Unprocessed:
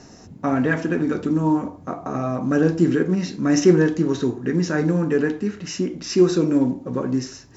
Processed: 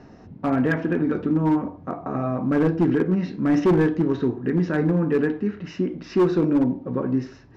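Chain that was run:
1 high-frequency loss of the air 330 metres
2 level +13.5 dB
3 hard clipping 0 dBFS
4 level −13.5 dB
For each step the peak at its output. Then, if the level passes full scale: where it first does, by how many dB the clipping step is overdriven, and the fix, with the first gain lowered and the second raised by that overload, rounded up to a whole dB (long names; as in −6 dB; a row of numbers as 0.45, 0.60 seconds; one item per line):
−4.0, +9.5, 0.0, −13.5 dBFS
step 2, 9.5 dB
step 2 +3.5 dB, step 4 −3.5 dB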